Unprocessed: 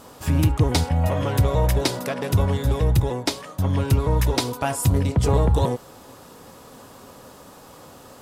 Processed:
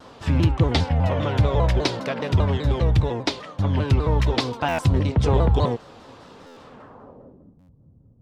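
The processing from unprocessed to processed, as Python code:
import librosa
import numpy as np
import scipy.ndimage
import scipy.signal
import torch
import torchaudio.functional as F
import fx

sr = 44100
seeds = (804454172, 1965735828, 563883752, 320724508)

y = fx.filter_sweep_lowpass(x, sr, from_hz=3900.0, to_hz=130.0, start_s=6.59, end_s=7.64, q=1.1)
y = fx.buffer_glitch(y, sr, at_s=(4.68, 6.46, 7.58), block=512, repeats=8)
y = fx.vibrato_shape(y, sr, shape='saw_down', rate_hz=5.0, depth_cents=160.0)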